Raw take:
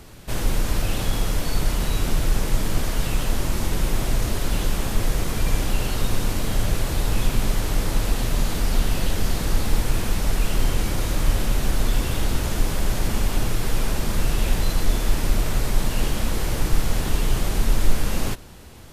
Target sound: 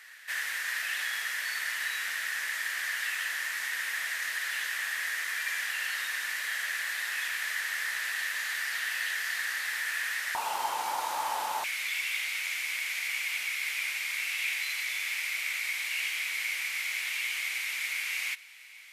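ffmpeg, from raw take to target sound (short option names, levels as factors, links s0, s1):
-af "asetnsamples=n=441:p=0,asendcmd='10.35 highpass f 880;11.64 highpass f 2200',highpass=f=1800:t=q:w=8.9,volume=0.501"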